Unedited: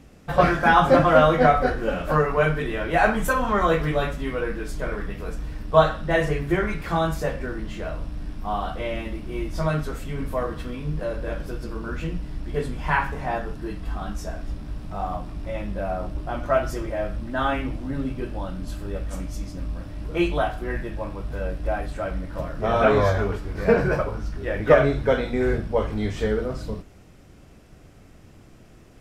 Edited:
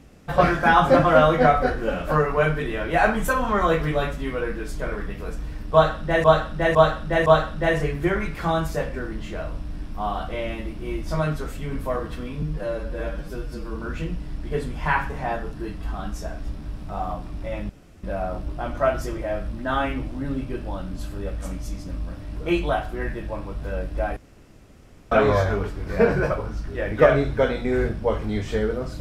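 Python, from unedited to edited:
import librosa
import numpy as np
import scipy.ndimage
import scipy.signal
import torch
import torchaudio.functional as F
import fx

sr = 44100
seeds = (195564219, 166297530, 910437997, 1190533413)

y = fx.edit(x, sr, fx.repeat(start_s=5.73, length_s=0.51, count=4),
    fx.stretch_span(start_s=10.89, length_s=0.89, factor=1.5),
    fx.insert_room_tone(at_s=15.72, length_s=0.34),
    fx.room_tone_fill(start_s=21.85, length_s=0.95), tone=tone)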